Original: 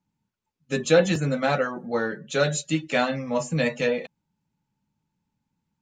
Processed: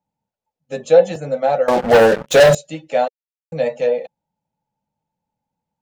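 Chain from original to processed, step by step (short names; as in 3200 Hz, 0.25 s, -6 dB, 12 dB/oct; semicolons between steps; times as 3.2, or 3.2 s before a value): 3.08–3.52 mute; band shelf 640 Hz +14 dB 1.1 oct; 1.68–2.55 sample leveller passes 5; gain -5.5 dB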